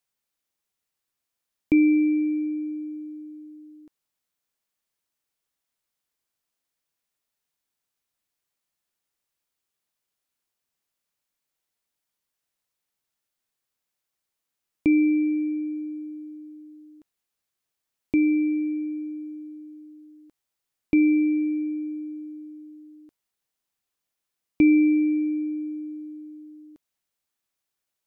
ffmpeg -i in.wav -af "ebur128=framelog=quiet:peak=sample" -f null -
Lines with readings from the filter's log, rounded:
Integrated loudness:
  I:         -23.6 LUFS
  Threshold: -36.1 LUFS
Loudness range:
  LRA:         6.3 LU
  Threshold: -47.8 LUFS
  LRA low:   -31.6 LUFS
  LRA high:  -25.3 LUFS
Sample peak:
  Peak:      -10.0 dBFS